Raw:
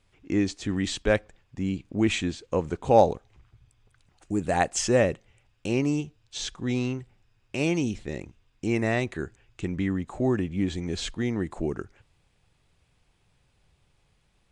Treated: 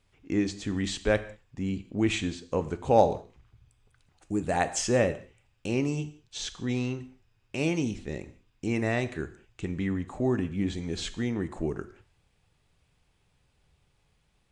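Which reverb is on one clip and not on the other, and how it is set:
reverb whose tail is shaped and stops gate 220 ms falling, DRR 11 dB
level −2.5 dB

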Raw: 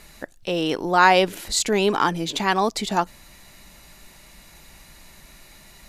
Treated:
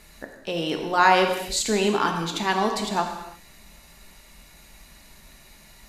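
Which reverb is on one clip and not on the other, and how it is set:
reverb whose tail is shaped and stops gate 380 ms falling, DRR 3 dB
level −4 dB

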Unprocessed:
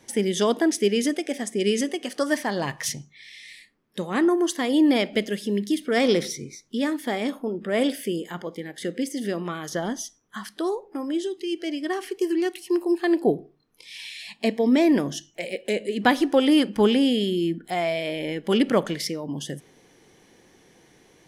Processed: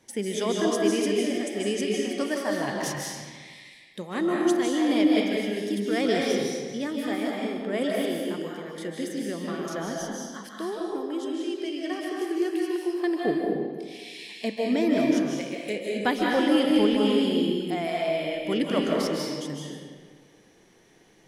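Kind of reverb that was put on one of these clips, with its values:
comb and all-pass reverb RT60 1.6 s, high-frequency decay 0.8×, pre-delay 115 ms, DRR −2.5 dB
level −6.5 dB

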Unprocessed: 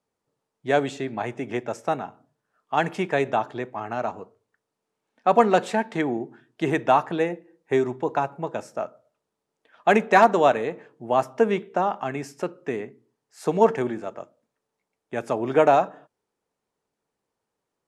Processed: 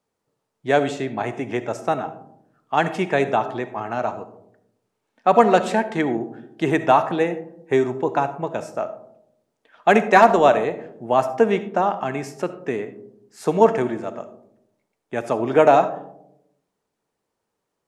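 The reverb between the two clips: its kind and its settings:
comb and all-pass reverb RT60 0.78 s, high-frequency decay 0.25×, pre-delay 25 ms, DRR 12 dB
level +3 dB

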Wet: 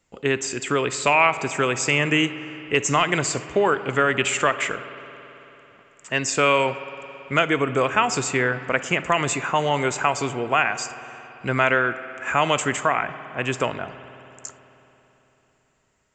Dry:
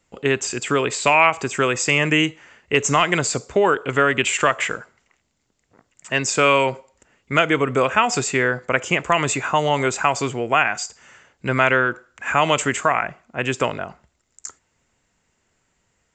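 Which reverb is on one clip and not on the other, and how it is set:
spring reverb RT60 3.6 s, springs 55 ms, chirp 35 ms, DRR 12.5 dB
level −2.5 dB

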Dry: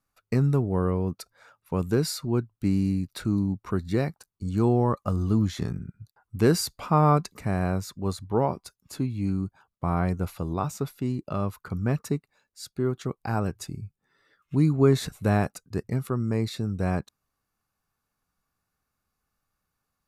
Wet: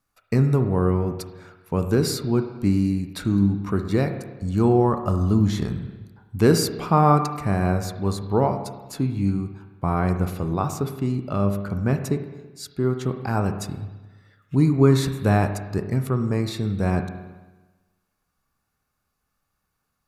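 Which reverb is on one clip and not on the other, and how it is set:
spring reverb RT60 1.2 s, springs 30/55 ms, chirp 50 ms, DRR 7 dB
level +3.5 dB

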